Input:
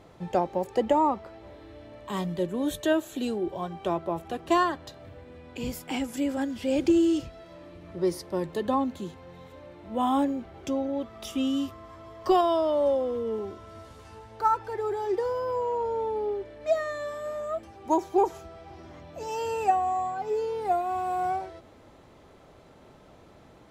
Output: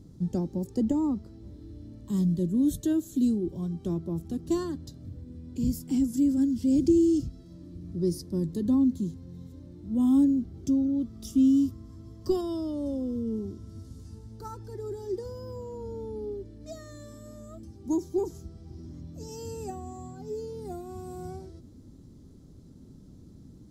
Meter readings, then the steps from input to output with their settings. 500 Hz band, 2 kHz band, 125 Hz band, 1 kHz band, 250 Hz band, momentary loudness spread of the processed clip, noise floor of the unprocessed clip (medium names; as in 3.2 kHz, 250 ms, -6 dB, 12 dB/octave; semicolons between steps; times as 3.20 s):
-7.0 dB, under -15 dB, +7.5 dB, -19.0 dB, +4.5 dB, 21 LU, -53 dBFS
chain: FFT filter 260 Hz 0 dB, 660 Hz -27 dB, 1.6 kHz -26 dB, 2.5 kHz -29 dB, 5.1 kHz -8 dB; trim +7.5 dB